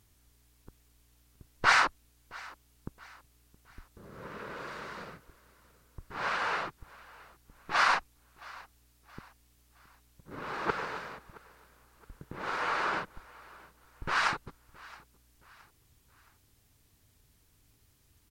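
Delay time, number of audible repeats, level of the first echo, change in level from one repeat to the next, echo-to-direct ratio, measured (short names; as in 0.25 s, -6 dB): 0.67 s, 2, -22.0 dB, -7.5 dB, -21.0 dB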